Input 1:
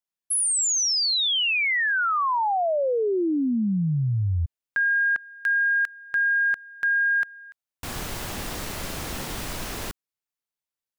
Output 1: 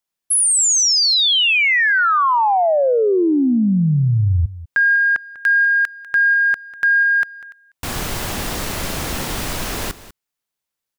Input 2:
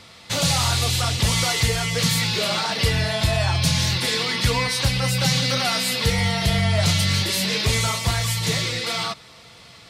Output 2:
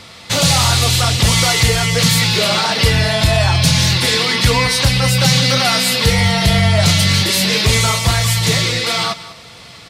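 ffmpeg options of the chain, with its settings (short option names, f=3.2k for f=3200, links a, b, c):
-af "asoftclip=type=tanh:threshold=-9dB,aecho=1:1:196:0.15,volume=8dB"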